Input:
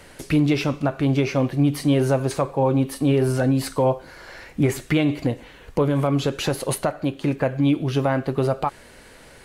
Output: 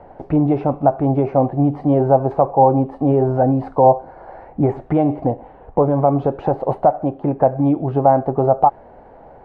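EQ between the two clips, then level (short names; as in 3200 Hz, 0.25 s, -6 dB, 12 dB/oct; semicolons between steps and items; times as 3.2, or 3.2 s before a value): synth low-pass 780 Hz, resonance Q 4.9; +1.5 dB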